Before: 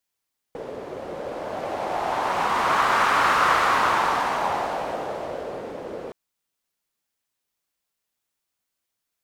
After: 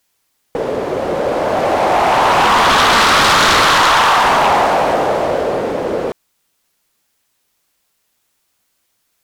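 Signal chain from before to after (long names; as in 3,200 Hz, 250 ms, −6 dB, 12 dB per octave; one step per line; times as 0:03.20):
0:03.65–0:04.24: high-pass filter 550 Hz 24 dB per octave
sine wavefolder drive 12 dB, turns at −7.5 dBFS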